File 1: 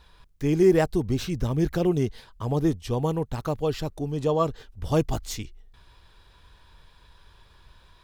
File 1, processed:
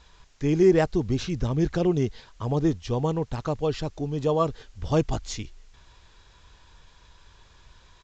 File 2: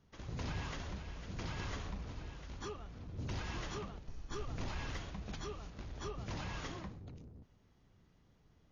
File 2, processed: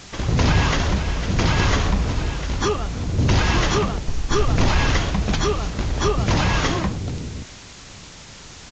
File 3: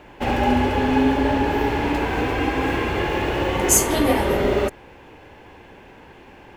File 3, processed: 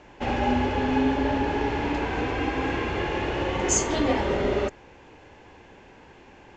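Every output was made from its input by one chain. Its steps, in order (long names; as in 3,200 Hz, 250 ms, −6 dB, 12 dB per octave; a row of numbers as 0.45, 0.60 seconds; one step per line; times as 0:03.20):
in parallel at −11 dB: bit-depth reduction 8 bits, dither triangular
on the sum: downsampling to 16,000 Hz
normalise the peak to −9 dBFS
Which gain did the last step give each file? −2.0, +21.0, −7.0 decibels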